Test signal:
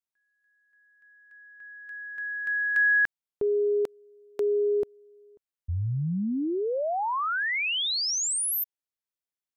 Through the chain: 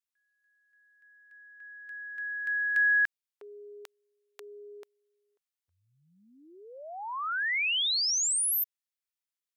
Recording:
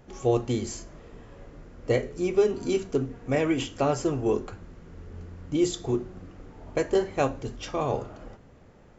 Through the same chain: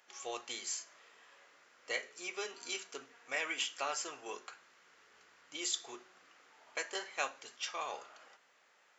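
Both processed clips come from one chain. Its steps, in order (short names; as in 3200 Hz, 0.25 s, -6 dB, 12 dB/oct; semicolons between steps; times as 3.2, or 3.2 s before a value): HPF 1500 Hz 12 dB/oct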